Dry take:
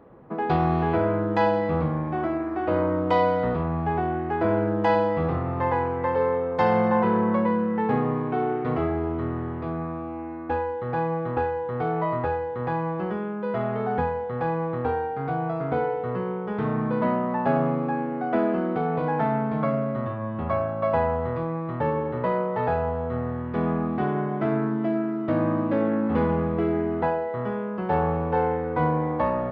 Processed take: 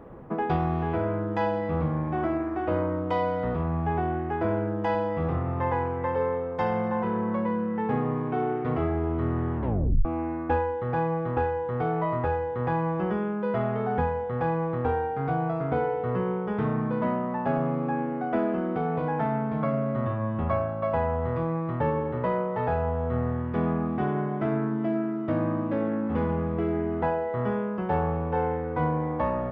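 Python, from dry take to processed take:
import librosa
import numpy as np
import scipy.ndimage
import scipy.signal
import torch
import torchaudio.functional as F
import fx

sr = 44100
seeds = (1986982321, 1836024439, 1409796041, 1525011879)

y = fx.edit(x, sr, fx.tape_stop(start_s=9.56, length_s=0.49), tone=tone)
y = fx.low_shelf(y, sr, hz=70.0, db=11.0)
y = fx.notch(y, sr, hz=4200.0, q=6.6)
y = fx.rider(y, sr, range_db=10, speed_s=0.5)
y = F.gain(torch.from_numpy(y), -3.0).numpy()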